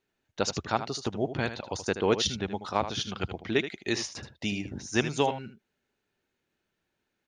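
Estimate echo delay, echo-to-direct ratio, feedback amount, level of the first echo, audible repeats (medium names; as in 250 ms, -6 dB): 78 ms, -11.0 dB, no regular repeats, -11.0 dB, 1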